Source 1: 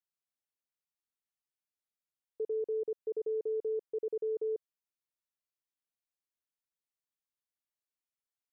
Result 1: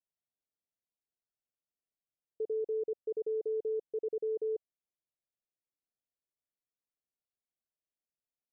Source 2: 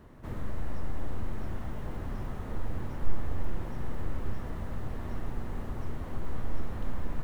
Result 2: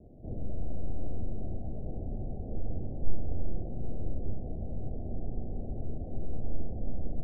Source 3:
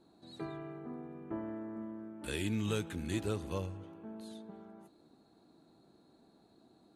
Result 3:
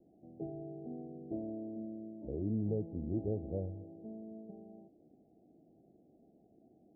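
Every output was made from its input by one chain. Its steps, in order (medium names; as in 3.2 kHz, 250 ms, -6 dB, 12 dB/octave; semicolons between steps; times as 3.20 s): steep low-pass 760 Hz 96 dB/octave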